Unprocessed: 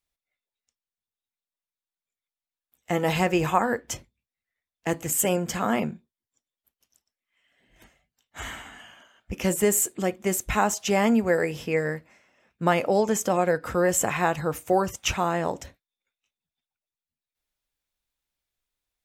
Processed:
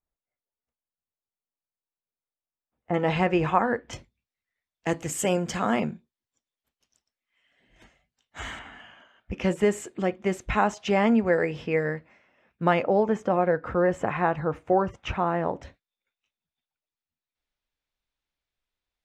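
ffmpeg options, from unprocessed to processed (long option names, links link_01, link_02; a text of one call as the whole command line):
ffmpeg -i in.wav -af "asetnsamples=nb_out_samples=441:pad=0,asendcmd='2.94 lowpass f 2800;3.93 lowpass f 6200;8.59 lowpass f 3200;12.83 lowpass f 1800;15.63 lowpass f 4500',lowpass=1100" out.wav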